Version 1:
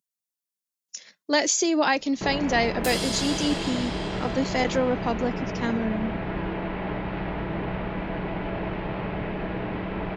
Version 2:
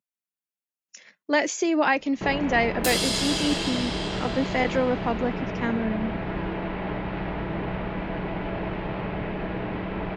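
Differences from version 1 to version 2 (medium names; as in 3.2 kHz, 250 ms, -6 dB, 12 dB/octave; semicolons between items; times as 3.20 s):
speech: add resonant high shelf 3.2 kHz -7.5 dB, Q 1.5; second sound +5.0 dB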